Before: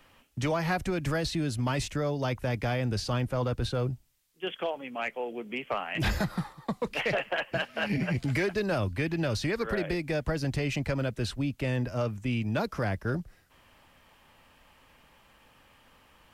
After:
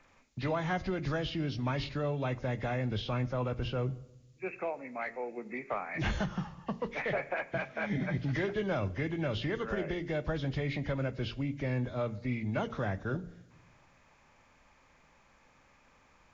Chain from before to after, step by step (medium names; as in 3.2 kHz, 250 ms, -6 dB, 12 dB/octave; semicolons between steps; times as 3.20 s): knee-point frequency compression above 1.6 kHz 1.5:1; de-hum 57.81 Hz, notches 8; on a send: reverberation RT60 1.0 s, pre-delay 5 ms, DRR 17 dB; on the sum: trim -3.5 dB